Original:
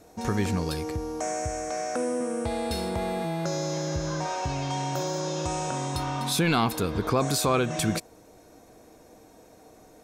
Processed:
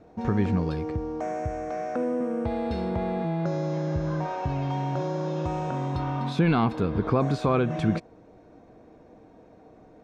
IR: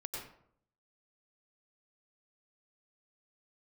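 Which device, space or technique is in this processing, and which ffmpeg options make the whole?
phone in a pocket: -af "lowpass=3500,equalizer=f=170:t=o:w=1.7:g=4,highshelf=f=2400:g=-9"

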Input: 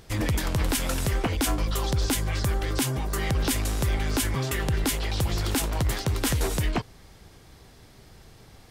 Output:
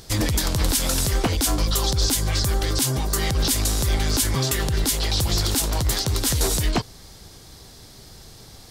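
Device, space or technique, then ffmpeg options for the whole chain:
over-bright horn tweeter: -af "highshelf=f=3300:t=q:w=1.5:g=6.5,alimiter=limit=0.168:level=0:latency=1:release=93,volume=1.68"

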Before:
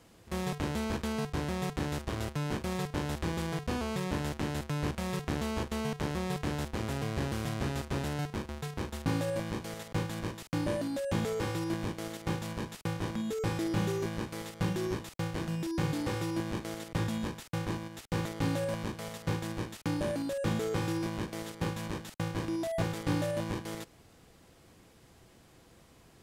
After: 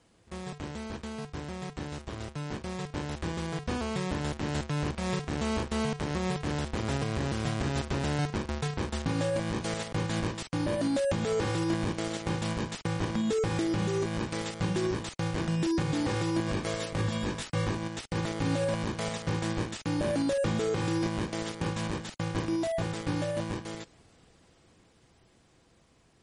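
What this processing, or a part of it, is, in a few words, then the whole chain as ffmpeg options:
low-bitrate web radio: -filter_complex "[0:a]asettb=1/sr,asplit=3[s0][s1][s2];[s0]atrim=end=16.464[s3];[s1]atrim=start=16.46:end=17.75,asetpts=PTS-STARTPTS,afade=t=in:d=0.004:c=qsin,afade=t=out:st=1.286:d=0.004:c=qsin,asplit=2[s4][s5];[s5]adelay=20,volume=0.708[s6];[s4][s6]amix=inputs=2:normalize=0,atrim=end_sample=56889[s7];[s2]atrim=start=17.746[s8];[s3][s7]acrossfade=d=0.004:c1=hsin:c2=qsin[s9];[s9][s8]acrossfade=d=0.004:c1=qsin:c2=hsin,dynaudnorm=f=700:g=13:m=5.01,alimiter=limit=0.178:level=0:latency=1:release=146,volume=0.562" -ar 44100 -c:a libmp3lame -b:a 40k

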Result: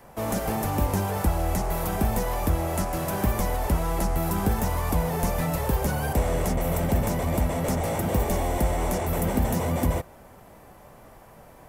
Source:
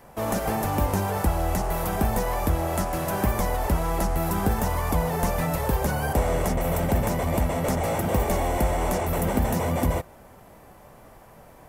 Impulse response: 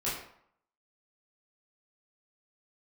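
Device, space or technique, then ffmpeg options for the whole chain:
one-band saturation: -filter_complex "[0:a]acrossover=split=410|3800[s0][s1][s2];[s1]asoftclip=type=tanh:threshold=0.0447[s3];[s0][s3][s2]amix=inputs=3:normalize=0"

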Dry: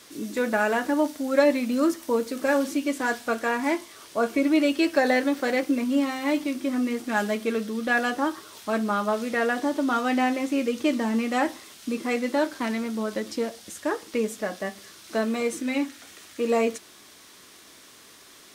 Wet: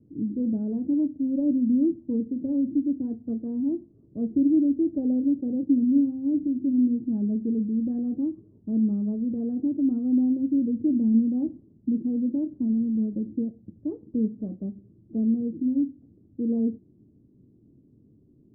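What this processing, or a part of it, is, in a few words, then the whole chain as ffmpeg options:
the neighbour's flat through the wall: -filter_complex "[0:a]lowpass=f=280:w=0.5412,lowpass=f=280:w=1.3066,equalizer=f=120:t=o:w=0.58:g=8,asettb=1/sr,asplit=3[s0][s1][s2];[s0]atrim=end=13.494[s3];[s1]atrim=start=13.49:end=14.69,asetpts=PTS-STARTPTS,afade=t=in:d=0.004:c=qsin,afade=t=out:st=1.196:d=0.004:c=qsin,adynamicequalizer=threshold=0.00158:dfrequency=1100:dqfactor=1.1:tfrequency=1100:tqfactor=1.1:attack=5:release=100:ratio=0.375:range=2.5:mode=boostabove:tftype=bell[s4];[s2]atrim=start=14.686[s5];[s3][s4]acrossfade=d=0.004:c1=hsin:c2=qsin[s6];[s6][s5]acrossfade=d=0.004:c1=qsin:c2=hsin,volume=1.88"

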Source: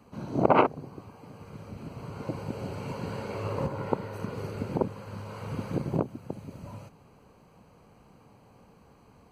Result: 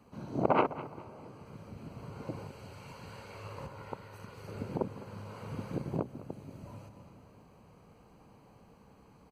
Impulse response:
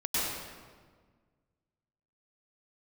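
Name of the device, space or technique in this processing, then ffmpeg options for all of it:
ducked reverb: -filter_complex "[0:a]asettb=1/sr,asplit=3[s0][s1][s2];[s0]atrim=end=0.984[s3];[s1]atrim=start=0.98:end=1.46,asetpts=PTS-STARTPTS,afade=t=in:d=0.004:c=qsin,afade=t=out:st=0.476:d=0.004:c=qsin,lowpass=12000[s4];[s2]atrim=start=1.456[s5];[s3][s4]acrossfade=d=0.004:c1=hsin:c2=qsin[s6];[s6][s5]acrossfade=d=0.004:c1=qsin:c2=hsin,asplit=3[s7][s8][s9];[1:a]atrim=start_sample=2205[s10];[s8][s10]afir=irnorm=-1:irlink=0[s11];[s9]apad=whole_len=410679[s12];[s11][s12]sidechaincompress=threshold=0.00355:ratio=8:attack=16:release=367,volume=0.299[s13];[s7][s13]amix=inputs=2:normalize=0,asettb=1/sr,asplit=3[s14][s15][s16];[s14]atrim=end=2.474[s17];[s15]atrim=start=2.47:end=4.48,asetpts=PTS-STARTPTS,afade=t=in:d=0.004:c=qsin,afade=t=out:st=2.006:d=0.004:c=qsin,equalizer=f=280:w=0.39:g=-11[s18];[s16]atrim=start=4.476[s19];[s17][s18]acrossfade=d=0.004:c1=hsin:c2=qsin[s20];[s20][s19]acrossfade=d=0.004:c1=qsin:c2=hsin,aecho=1:1:206|412|618:0.158|0.0475|0.0143,volume=0.501"

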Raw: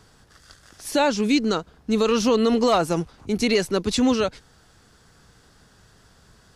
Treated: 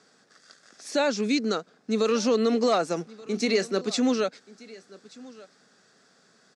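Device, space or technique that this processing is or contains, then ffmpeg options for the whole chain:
television speaker: -filter_complex "[0:a]equalizer=f=2700:w=5.1:g=4,asettb=1/sr,asplit=3[s0][s1][s2];[s0]atrim=end=3.024[s3];[s1]atrim=start=3.02:end=3.91,asetpts=PTS-STARTPTS,afade=t=in:d=0.004:c=qsin,afade=t=out:st=0.886:d=0.004:c=qsin,asplit=2[s4][s5];[s5]adelay=31,volume=0.211[s6];[s4][s6]amix=inputs=2:normalize=0,atrim=end_sample=39249[s7];[s2]atrim=start=3.906[s8];[s3][s7]acrossfade=d=0.004:c1=hsin:c2=qsin[s9];[s9][s8]acrossfade=d=0.004:c1=qsin:c2=hsin,highpass=f=210:w=0.5412,highpass=f=210:w=1.3066,equalizer=f=320:t=q:w=4:g=-5,equalizer=f=950:t=q:w=4:g=-9,equalizer=f=2900:t=q:w=4:g=-10,lowpass=f=7900:w=0.5412,lowpass=f=7900:w=1.3066,aecho=1:1:1180:0.0841,volume=0.794"

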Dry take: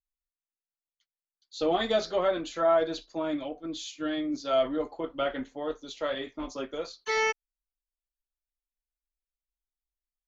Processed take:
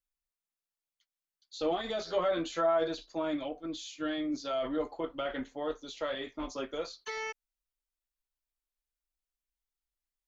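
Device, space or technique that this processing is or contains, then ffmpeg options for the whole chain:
de-esser from a sidechain: -filter_complex "[0:a]equalizer=f=210:t=o:w=2.8:g=-2.5,asplit=2[s0][s1];[s1]highpass=f=6300:p=1,apad=whole_len=453008[s2];[s0][s2]sidechaincompress=threshold=0.00562:ratio=12:attack=4.3:release=43,asettb=1/sr,asplit=3[s3][s4][s5];[s3]atrim=end=2.044[s6];[s4]atrim=start=2.04:end=2.88,asetpts=PTS-STARTPTS,afade=t=in:d=0.004:c=qsin,afade=t=out:st=0.836:d=0.004:c=qsin,asplit=2[s7][s8];[s8]adelay=12,volume=0.668[s9];[s7][s9]amix=inputs=2:normalize=0,atrim=end_sample=37044[s10];[s5]atrim=start=2.876[s11];[s6][s10]acrossfade=d=0.004:c1=hsin:c2=qsin[s12];[s12][s11]acrossfade=d=0.004:c1=qsin:c2=hsin"

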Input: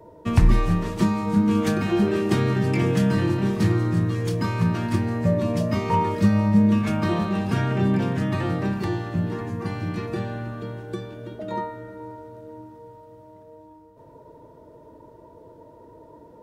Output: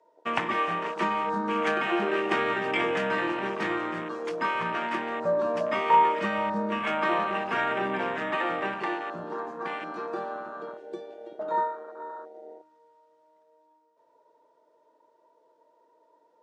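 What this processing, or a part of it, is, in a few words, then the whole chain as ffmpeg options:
over-cleaned archive recording: -af "highpass=140,lowpass=5600,highpass=640,afwtdn=0.0141,equalizer=f=8000:w=0.65:g=5.5,volume=1.78"

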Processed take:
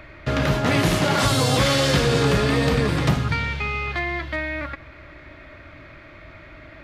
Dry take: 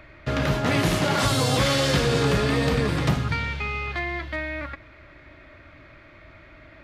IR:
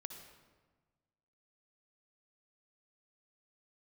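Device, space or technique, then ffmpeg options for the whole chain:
compressed reverb return: -filter_complex "[0:a]asplit=2[s0][s1];[1:a]atrim=start_sample=2205[s2];[s1][s2]afir=irnorm=-1:irlink=0,acompressor=threshold=0.00891:ratio=6,volume=0.668[s3];[s0][s3]amix=inputs=2:normalize=0,volume=1.26"

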